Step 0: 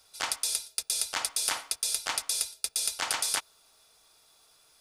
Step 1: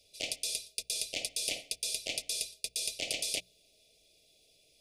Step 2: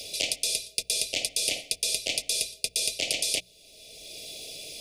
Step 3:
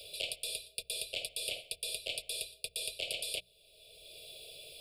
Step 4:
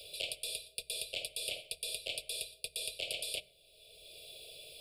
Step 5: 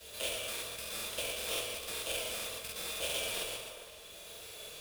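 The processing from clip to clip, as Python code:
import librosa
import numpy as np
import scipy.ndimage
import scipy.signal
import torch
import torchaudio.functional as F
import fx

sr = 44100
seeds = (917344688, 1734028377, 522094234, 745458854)

y1 = scipy.signal.sosfilt(scipy.signal.ellip(3, 1.0, 40, [620.0, 2400.0], 'bandstop', fs=sr, output='sos'), x)
y1 = fx.high_shelf(y1, sr, hz=5500.0, db=-12.0)
y1 = fx.hum_notches(y1, sr, base_hz=60, count=3)
y1 = y1 * 10.0 ** (2.5 / 20.0)
y2 = fx.band_squash(y1, sr, depth_pct=70)
y2 = y2 * 10.0 ** (7.0 / 20.0)
y3 = fx.fixed_phaser(y2, sr, hz=1300.0, stages=8)
y3 = y3 * 10.0 ** (-6.5 / 20.0)
y4 = fx.rev_plate(y3, sr, seeds[0], rt60_s=0.83, hf_ratio=0.45, predelay_ms=0, drr_db=16.5)
y4 = y4 * 10.0 ** (-1.0 / 20.0)
y5 = fx.dead_time(y4, sr, dead_ms=0.1)
y5 = fx.rev_fdn(y5, sr, rt60_s=2.3, lf_ratio=0.8, hf_ratio=0.7, size_ms=89.0, drr_db=-9.0)
y5 = fx.buffer_crackle(y5, sr, first_s=0.39, period_s=0.14, block=2048, kind='repeat')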